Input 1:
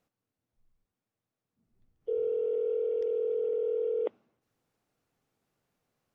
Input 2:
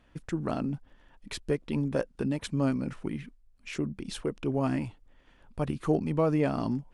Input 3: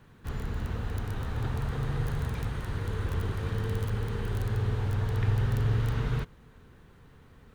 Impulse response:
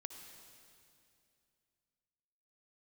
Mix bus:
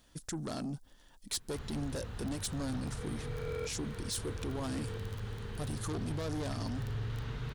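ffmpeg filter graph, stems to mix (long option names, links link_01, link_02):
-filter_complex "[0:a]acrusher=bits=4:mix=0:aa=0.5,adelay=900,volume=-8dB[link_01];[1:a]asoftclip=type=tanh:threshold=-29dB,aexciter=amount=3.8:drive=8.5:freq=3600,volume=23dB,asoftclip=hard,volume=-23dB,volume=-3.5dB,asplit=2[link_02][link_03];[2:a]equalizer=frequency=4300:width=0.71:gain=6,adelay=1300,volume=-10dB[link_04];[link_03]apad=whole_len=310874[link_05];[link_01][link_05]sidechaincompress=threshold=-53dB:ratio=8:attack=16:release=349[link_06];[link_06][link_02][link_04]amix=inputs=3:normalize=0,alimiter=level_in=5.5dB:limit=-24dB:level=0:latency=1:release=11,volume=-5.5dB"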